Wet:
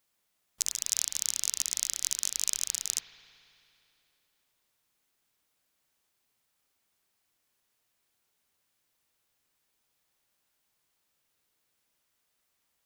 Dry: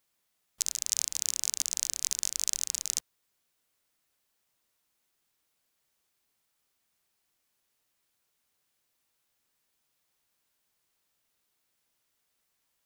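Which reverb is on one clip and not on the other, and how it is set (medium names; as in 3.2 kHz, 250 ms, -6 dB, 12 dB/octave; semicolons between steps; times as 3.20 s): spring tank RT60 2.8 s, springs 55 ms, chirp 45 ms, DRR 6 dB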